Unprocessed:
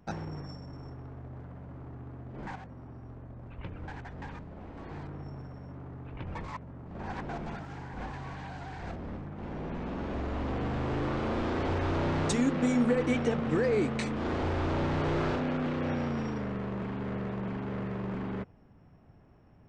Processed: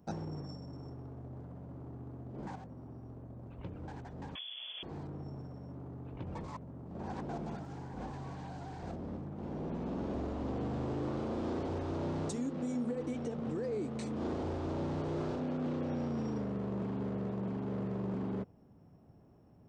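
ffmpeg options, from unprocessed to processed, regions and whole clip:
-filter_complex "[0:a]asettb=1/sr,asplit=3[a][b][c];[a]atrim=end=4.354[d];[b]atrim=start=4.35:end=4.83,asetpts=PTS-STARTPTS,afade=t=in:d=0.004:c=qsin,afade=t=out:st=0.476:d=0.004:c=qsin,lowpass=f=3k:t=q:w=0.5098,lowpass=f=3k:t=q:w=0.6013,lowpass=f=3k:t=q:w=0.9,lowpass=f=3k:t=q:w=2.563,afreqshift=-3500,equalizer=f=640:t=o:w=0.76:g=6.5,acontrast=73[e];[c]atrim=start=4.826[f];[d][e]acrossfade=d=0.004:c1=hsin:c2=qsin[g];[g][f]acrossfade=d=0.004:c1=qsin:c2=hsin,highpass=f=140:p=1,equalizer=f=2k:t=o:w=2.1:g=-13,alimiter=level_in=6dB:limit=-24dB:level=0:latency=1:release=395,volume=-6dB,volume=1.5dB"

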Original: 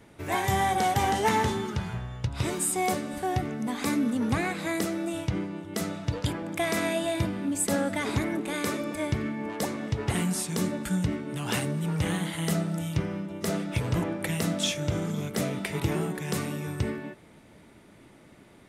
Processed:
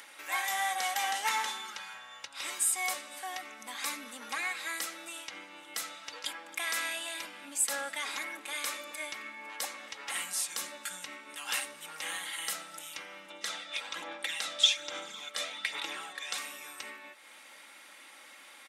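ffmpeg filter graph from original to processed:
-filter_complex "[0:a]asettb=1/sr,asplit=3[a][b][c];[a]atrim=end=13.304[d];[b]atrim=start=13.3:end=16.38,asetpts=PTS-STARTPTS,afade=t=in:d=0.004:c=qsin,afade=t=out:st=3.076:d=0.004:c=qsin,highpass=140,lowpass=7.3k,equalizer=f=3.6k:t=o:w=0.21:g=8,aphaser=in_gain=1:out_gain=1:delay=1.7:decay=0.39:speed=1.2:type=sinusoidal[e];[c]atrim=start=16.376[f];[d][e]acrossfade=d=0.004:c1=hsin:c2=qsin[g];[g][f]acrossfade=d=0.004:c1=qsin:c2=hsin,highpass=1.3k,aecho=1:1:3.7:0.57,acompressor=mode=upward:threshold=-41dB:ratio=2.5,volume=-1dB"

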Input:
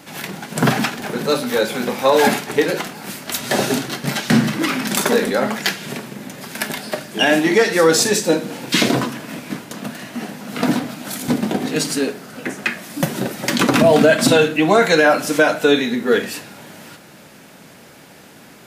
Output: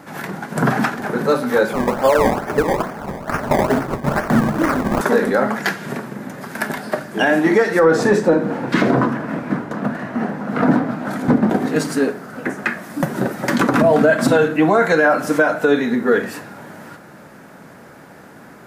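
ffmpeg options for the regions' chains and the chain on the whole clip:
-filter_complex "[0:a]asettb=1/sr,asplit=3[a][b][c];[a]atrim=end=1.734[d];[b]atrim=start=1.73:end=5.01,asetpts=PTS-STARTPTS,afade=t=in:d=0.004:c=qsin,afade=t=out:st=3.276:d=0.004:c=qsin,equalizer=f=620:w=4.7:g=7.5,acrusher=samples=22:mix=1:aa=0.000001:lfo=1:lforange=22:lforate=2.3[e];[c]atrim=start=5.006[f];[d][e]acrossfade=d=0.004:c1=hsin:c2=qsin[g];[g][f]acrossfade=d=0.004:c1=qsin:c2=hsin,asettb=1/sr,asplit=3[h][i][j];[h]atrim=end=7.794[k];[i]atrim=start=7.79:end=11.5,asetpts=PTS-STARTPTS,afade=t=in:d=0.004:c=qsin,afade=t=out:st=3.706:d=0.004:c=qsin,lowpass=f=1.7k:p=1,acontrast=31,bandreject=f=60:t=h:w=6,bandreject=f=120:t=h:w=6,bandreject=f=180:t=h:w=6,bandreject=f=240:t=h:w=6,bandreject=f=300:t=h:w=6,bandreject=f=360:t=h:w=6,bandreject=f=420:t=h:w=6[l];[j]atrim=start=11.496[m];[k][l]acrossfade=d=0.004:c1=hsin:c2=qsin[n];[n][m]acrossfade=d=0.004:c1=qsin:c2=hsin,highshelf=f=2.1k:t=q:w=1.5:g=-9,alimiter=limit=-7.5dB:level=0:latency=1:release=172,volume=2.5dB"

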